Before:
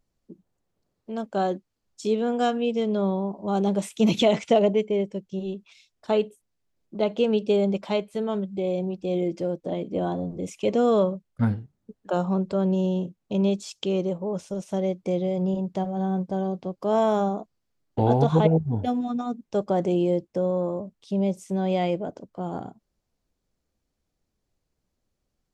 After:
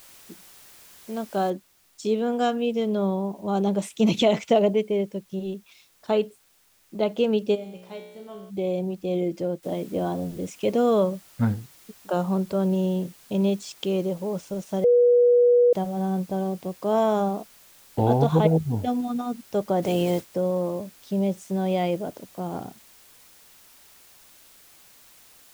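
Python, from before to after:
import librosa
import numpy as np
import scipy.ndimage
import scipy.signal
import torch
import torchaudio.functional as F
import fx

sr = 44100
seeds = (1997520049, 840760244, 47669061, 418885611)

y = fx.noise_floor_step(x, sr, seeds[0], at_s=1.5, before_db=-50, after_db=-68, tilt_db=0.0)
y = fx.comb_fb(y, sr, f0_hz=61.0, decay_s=1.0, harmonics='all', damping=0.0, mix_pct=90, at=(7.54, 8.49), fade=0.02)
y = fx.noise_floor_step(y, sr, seeds[1], at_s=9.63, before_db=-63, after_db=-53, tilt_db=0.0)
y = fx.spec_clip(y, sr, under_db=14, at=(19.82, 20.33), fade=0.02)
y = fx.edit(y, sr, fx.bleep(start_s=14.84, length_s=0.89, hz=485.0, db=-13.5), tone=tone)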